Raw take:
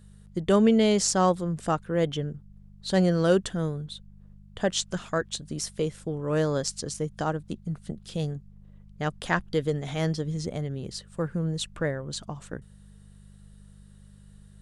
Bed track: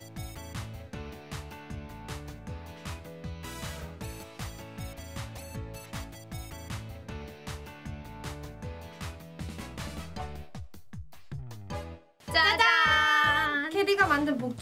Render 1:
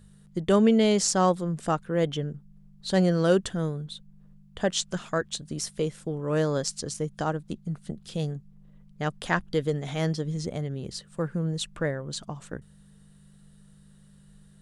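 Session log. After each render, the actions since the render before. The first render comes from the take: de-hum 50 Hz, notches 2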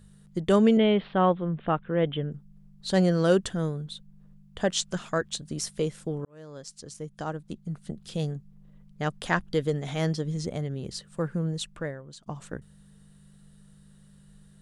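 0.77–2.32 s: steep low-pass 3.5 kHz 72 dB/octave; 6.25–8.09 s: fade in linear; 11.40–12.26 s: fade out, to -17.5 dB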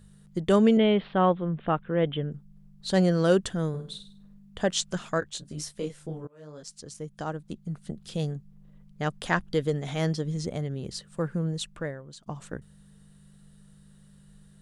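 3.69–4.58 s: flutter echo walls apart 8.6 m, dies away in 0.42 s; 5.20–6.63 s: detune thickener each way 27 cents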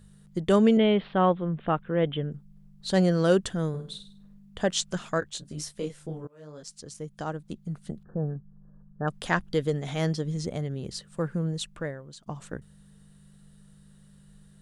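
8.03–9.08 s: brick-wall FIR low-pass 1.8 kHz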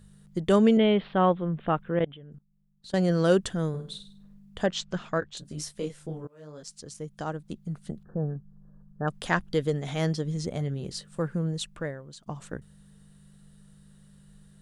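1.99–3.10 s: level held to a coarse grid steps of 23 dB; 4.66–5.37 s: distance through air 130 m; 10.54–11.21 s: doubling 21 ms -10 dB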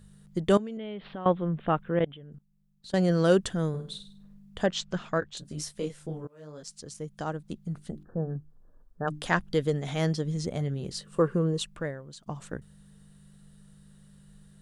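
0.57–1.26 s: compression, threshold -35 dBFS; 7.73–9.37 s: hum notches 50/100/150/200/250/300/350/400 Hz; 11.06–11.63 s: small resonant body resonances 410/1100/2800 Hz, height 12 dB, ringing for 20 ms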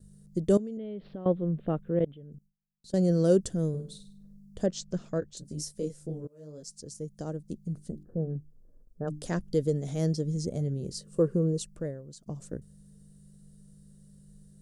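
gate with hold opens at -49 dBFS; high-order bell 1.7 kHz -14.5 dB 2.6 oct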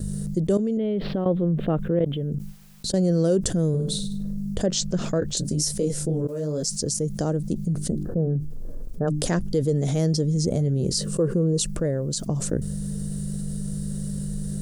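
level flattener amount 70%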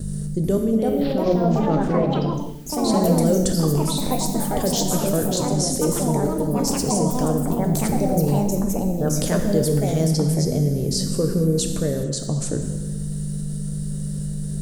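gated-style reverb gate 480 ms falling, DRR 4.5 dB; ever faster or slower copies 437 ms, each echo +4 st, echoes 3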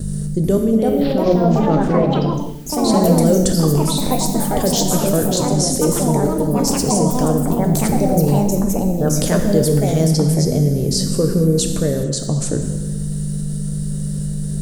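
trim +4.5 dB

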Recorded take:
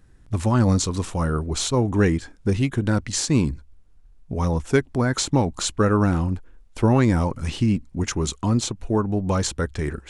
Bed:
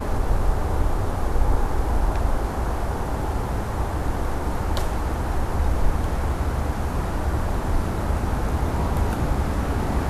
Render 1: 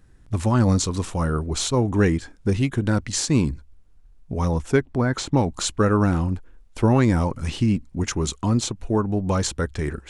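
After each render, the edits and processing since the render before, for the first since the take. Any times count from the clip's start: 4.72–5.37 s: treble shelf 5.1 kHz -11.5 dB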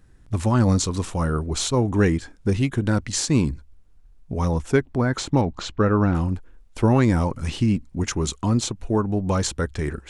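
5.41–6.15 s: distance through air 160 m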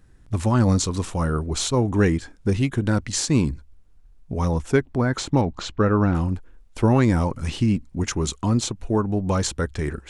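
no audible change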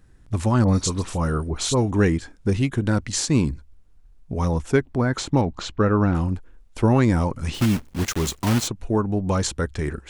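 0.64–1.91 s: phase dispersion highs, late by 48 ms, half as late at 2.3 kHz; 7.54–8.69 s: block-companded coder 3-bit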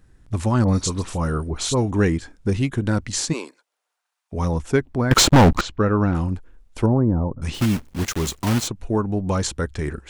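3.32–4.32 s: high-pass 380 Hz -> 960 Hz 24 dB/octave; 5.11–5.61 s: waveshaping leveller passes 5; 6.86–7.42 s: Gaussian low-pass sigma 9.1 samples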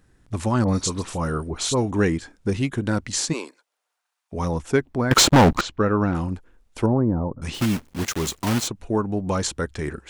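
bass shelf 100 Hz -9 dB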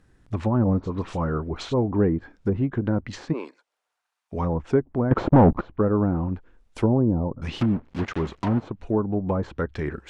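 low-pass that closes with the level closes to 820 Hz, closed at -19 dBFS; treble shelf 5.7 kHz -7 dB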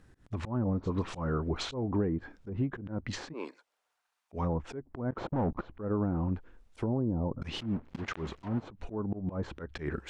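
compression 10:1, threshold -26 dBFS, peak gain reduction 15 dB; slow attack 122 ms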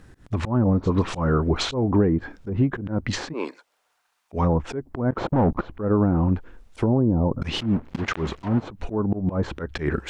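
trim +10.5 dB

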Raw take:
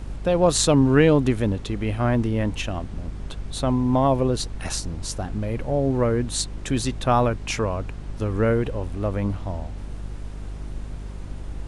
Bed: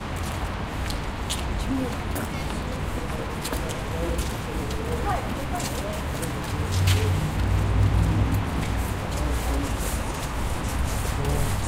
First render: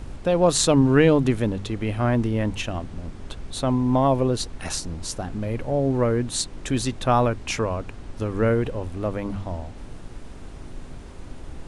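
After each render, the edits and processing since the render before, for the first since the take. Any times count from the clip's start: de-hum 50 Hz, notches 4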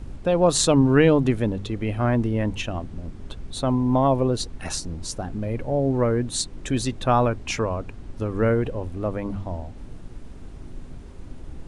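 noise reduction 6 dB, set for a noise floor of -39 dBFS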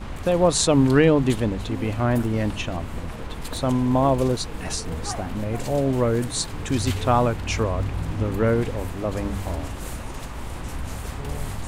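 add bed -6.5 dB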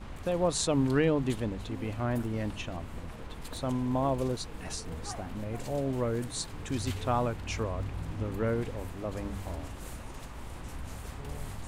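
trim -9.5 dB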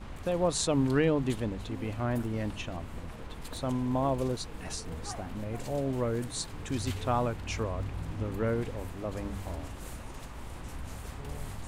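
no audible change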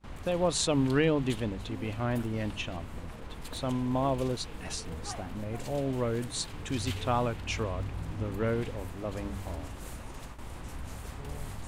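gate with hold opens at -33 dBFS; dynamic bell 3 kHz, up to +5 dB, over -51 dBFS, Q 1.3

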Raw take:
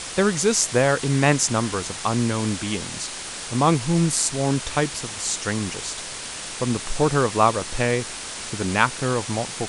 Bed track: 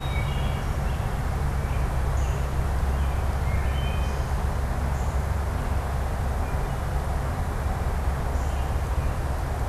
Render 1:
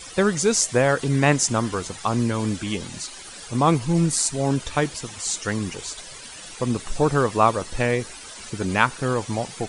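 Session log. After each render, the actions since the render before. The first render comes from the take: noise reduction 13 dB, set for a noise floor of -34 dBFS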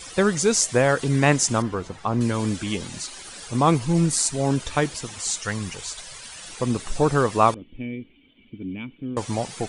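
1.62–2.21 s: low-pass 1.3 kHz 6 dB/octave; 5.31–6.48 s: peaking EQ 320 Hz -8 dB 1.2 oct; 7.54–9.17 s: cascade formant filter i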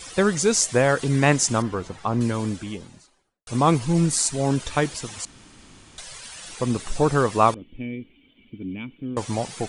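2.07–3.47 s: studio fade out; 5.25–5.98 s: room tone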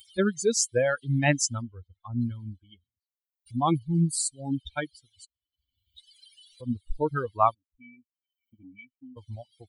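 expander on every frequency bin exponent 3; upward compressor, threshold -42 dBFS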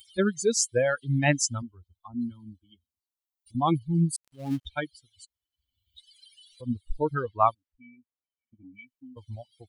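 1.62–3.55 s: static phaser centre 490 Hz, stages 6; 4.16–4.66 s: dead-time distortion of 0.16 ms; 7.15–8.74 s: level-controlled noise filter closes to 1.5 kHz, open at -20.5 dBFS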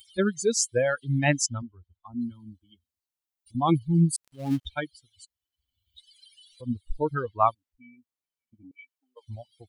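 1.46–2.08 s: distance through air 220 m; 3.69–4.74 s: gain +3 dB; 8.71–9.27 s: elliptic high-pass 440 Hz, stop band 60 dB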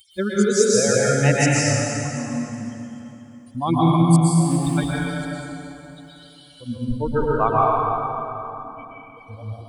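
plate-style reverb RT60 3.2 s, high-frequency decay 0.75×, pre-delay 105 ms, DRR -7 dB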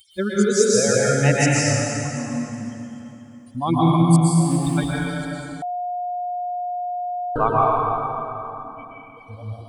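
5.62–7.36 s: bleep 715 Hz -23.5 dBFS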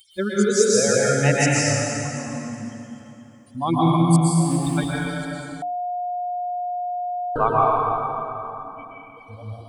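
bass shelf 170 Hz -3 dB; hum notches 60/120/180/240/300 Hz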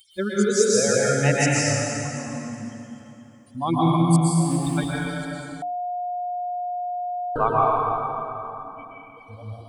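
trim -1.5 dB

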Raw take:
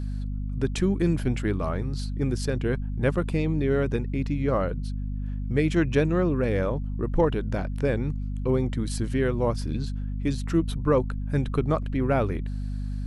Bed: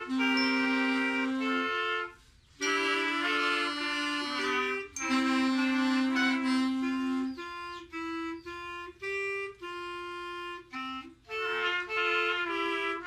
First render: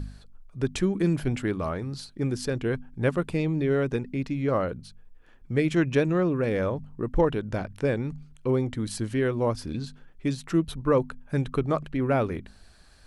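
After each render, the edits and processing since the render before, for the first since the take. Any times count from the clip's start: de-hum 50 Hz, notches 5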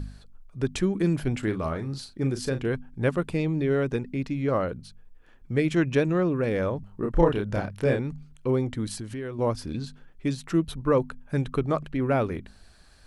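1.39–2.68 s: doubling 37 ms -10 dB; 6.80–8.00 s: doubling 30 ms -2.5 dB; 8.94–9.39 s: compression 3:1, threshold -33 dBFS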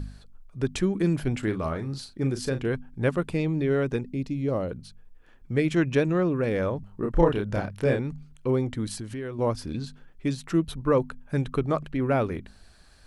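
4.01–4.71 s: peaking EQ 1.5 kHz -11.5 dB 1.5 oct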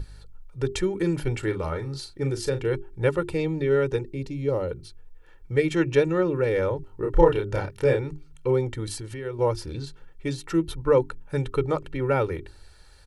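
hum notches 50/100/150/200/250/300/350/400 Hz; comb 2.2 ms, depth 73%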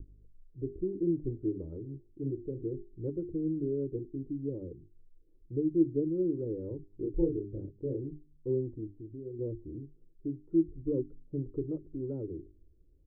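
rotary cabinet horn 6.7 Hz, later 0.6 Hz, at 4.70 s; four-pole ladder low-pass 360 Hz, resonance 60%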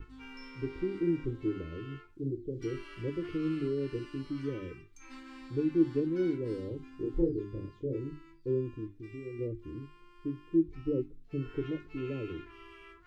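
add bed -21.5 dB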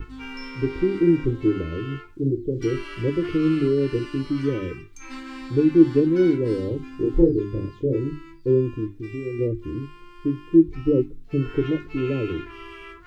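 trim +12 dB

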